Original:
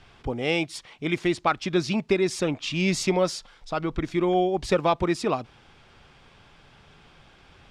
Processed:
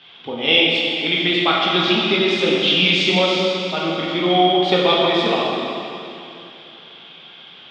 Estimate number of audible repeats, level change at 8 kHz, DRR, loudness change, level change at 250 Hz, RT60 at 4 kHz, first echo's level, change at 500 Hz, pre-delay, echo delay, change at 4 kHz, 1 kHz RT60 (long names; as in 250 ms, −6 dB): no echo audible, −3.5 dB, −5.0 dB, +9.0 dB, +5.0 dB, 2.7 s, no echo audible, +6.5 dB, 10 ms, no echo audible, +18.5 dB, 2.8 s